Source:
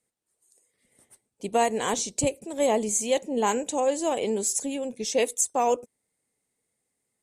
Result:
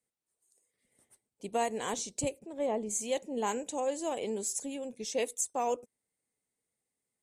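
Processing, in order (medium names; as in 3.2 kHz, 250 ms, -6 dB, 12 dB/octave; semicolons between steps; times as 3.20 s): 2.38–2.89 s: low-pass 1.8 kHz -> 1.1 kHz 6 dB/octave; trim -8 dB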